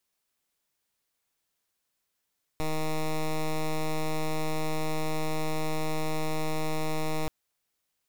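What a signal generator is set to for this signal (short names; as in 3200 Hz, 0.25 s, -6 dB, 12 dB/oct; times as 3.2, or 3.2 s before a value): pulse 156 Hz, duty 10% -28 dBFS 4.68 s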